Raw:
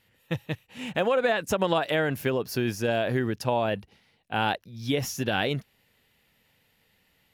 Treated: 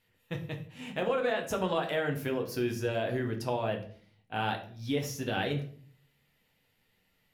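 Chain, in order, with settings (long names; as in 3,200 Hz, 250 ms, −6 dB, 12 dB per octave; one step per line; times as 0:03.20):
rectangular room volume 51 cubic metres, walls mixed, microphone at 0.49 metres
level −8 dB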